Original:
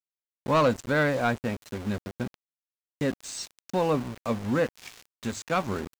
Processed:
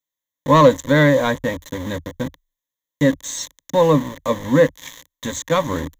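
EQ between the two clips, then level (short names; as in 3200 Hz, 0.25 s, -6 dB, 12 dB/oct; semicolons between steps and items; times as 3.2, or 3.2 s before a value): ripple EQ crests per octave 1.1, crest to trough 14 dB; +6.5 dB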